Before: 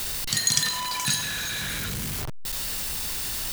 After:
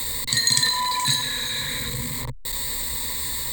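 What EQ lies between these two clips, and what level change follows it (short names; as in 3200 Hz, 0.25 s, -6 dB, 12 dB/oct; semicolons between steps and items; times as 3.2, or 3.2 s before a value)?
ripple EQ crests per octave 1, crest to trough 17 dB; -1.0 dB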